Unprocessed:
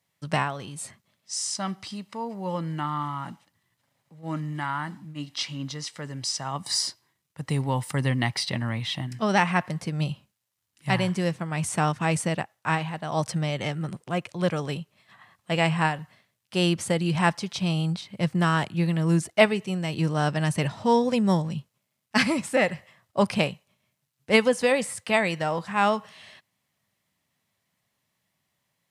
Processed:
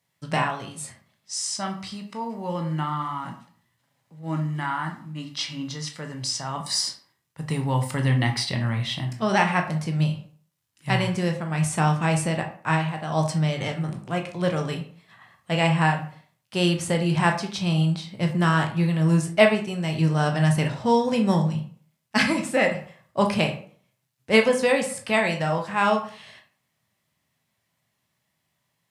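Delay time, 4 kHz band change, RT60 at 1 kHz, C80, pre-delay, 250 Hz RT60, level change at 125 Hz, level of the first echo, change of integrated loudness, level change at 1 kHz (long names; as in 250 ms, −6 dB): no echo audible, +1.5 dB, 0.50 s, 14.0 dB, 14 ms, 0.50 s, +3.5 dB, no echo audible, +2.0 dB, +1.5 dB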